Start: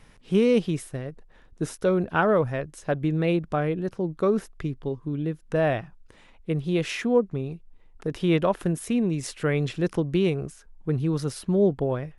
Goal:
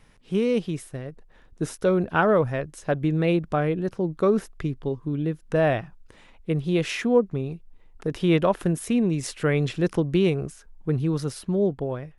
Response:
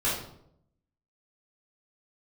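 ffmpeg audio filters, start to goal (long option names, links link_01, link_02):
-af "dynaudnorm=framelen=220:gausssize=11:maxgain=5dB,volume=-3dB"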